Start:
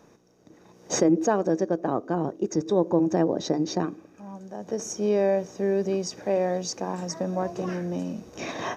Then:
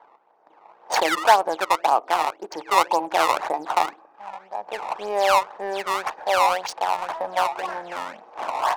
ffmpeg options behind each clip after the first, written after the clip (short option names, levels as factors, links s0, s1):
-af "acrusher=samples=16:mix=1:aa=0.000001:lfo=1:lforange=25.6:lforate=1.9,highpass=f=860:t=q:w=4.2,adynamicsmooth=sensitivity=5:basefreq=1700,volume=1.58"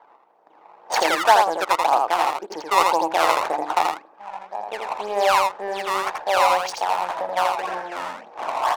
-af "aecho=1:1:83:0.668"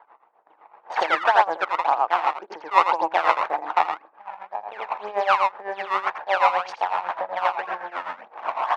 -af "lowpass=1800,tiltshelf=f=820:g=-7.5,tremolo=f=7.9:d=0.79,volume=1.19"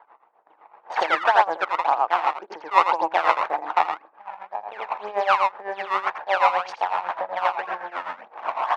-af anull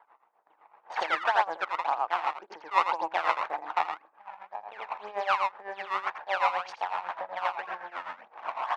-af "equalizer=f=420:t=o:w=2.5:g=-4.5,volume=0.562"